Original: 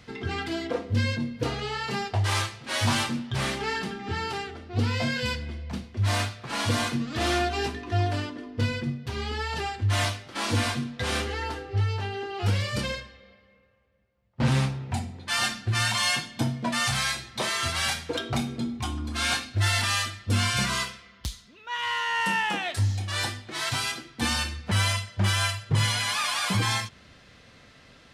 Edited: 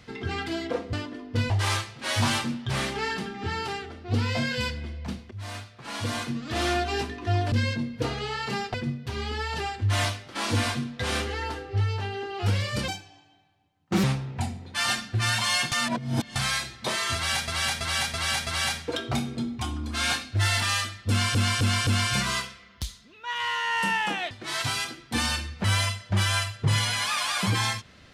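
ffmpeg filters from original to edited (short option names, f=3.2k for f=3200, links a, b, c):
-filter_complex "[0:a]asplit=18[a][b][c][d][e][f][g][h][i][j][k][l][m][n][o][p][q][r];[a]atrim=end=0.932[s];[b]atrim=start=8.168:end=8.742[t];[c]atrim=start=2.148:end=5.96,asetpts=PTS-STARTPTS,afade=t=out:st=3.808:d=0.004:c=hsin:silence=0.16788[u];[d]atrim=start=5.96:end=8.172,asetpts=PTS-STARTPTS,afade=t=in:d=1.53:silence=0.16788[v];[e]atrim=start=0.928:end=2.152[w];[f]atrim=start=8.738:end=12.884[x];[g]atrim=start=12.88:end=14.57,asetpts=PTS-STARTPTS,asetrate=64386,aresample=44100,atrim=end_sample=51047,asetpts=PTS-STARTPTS[y];[h]atrim=start=14.566:end=16.252[z];[i]atrim=start=16.248:end=16.892,asetpts=PTS-STARTPTS,areverse[aa];[j]atrim=start=16.888:end=18.012[ab];[k]atrim=start=17.678:end=18.012[ac];[l]atrim=start=17.678:end=18.012[ad];[m]atrim=start=17.678:end=18.012[ae];[n]atrim=start=17.678:end=20.562[af];[o]atrim=start=20.298:end=20.562[ag];[p]atrim=start=20.298:end=20.562[ah];[q]atrim=start=20.298:end=22.742[ai];[r]atrim=start=23.378[aj];[s][t]acrossfade=d=0.004:c1=hsin:c2=hsin[ak];[u][v]concat=n=2:v=0:a=1[al];[ak][al]acrossfade=d=0.004:c1=hsin:c2=hsin[am];[am][w]acrossfade=d=0.004:c1=hsin:c2=hsin[an];[an][x]acrossfade=d=0.004:c1=hsin:c2=hsin[ao];[ao][y]acrossfade=d=0.004:c1=hsin:c2=hsin[ap];[ap][z]acrossfade=d=0.004:c1=hsin:c2=hsin[aq];[aq][aa]acrossfade=d=0.004:c1=hsin:c2=hsin[ar];[ar][ab]acrossfade=d=0.004:c1=hsin:c2=hsin[as];[as][ac]acrossfade=d=0.004:c1=hsin:c2=hsin[at];[at][ad]acrossfade=d=0.004:c1=hsin:c2=hsin[au];[au][ae]acrossfade=d=0.004:c1=hsin:c2=hsin[av];[av][af]acrossfade=d=0.004:c1=hsin:c2=hsin[aw];[aw][ag]acrossfade=d=0.004:c1=hsin:c2=hsin[ax];[ax][ah]acrossfade=d=0.004:c1=hsin:c2=hsin[ay];[ay][ai]acrossfade=d=0.004:c1=hsin:c2=hsin[az];[az][aj]acrossfade=d=0.004:c1=hsin:c2=hsin"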